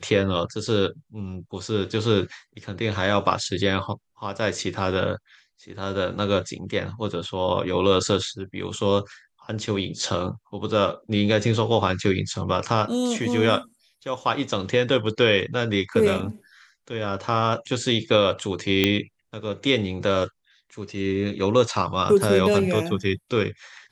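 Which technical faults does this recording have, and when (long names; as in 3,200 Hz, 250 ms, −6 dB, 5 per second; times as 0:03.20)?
0:18.84: click −5 dBFS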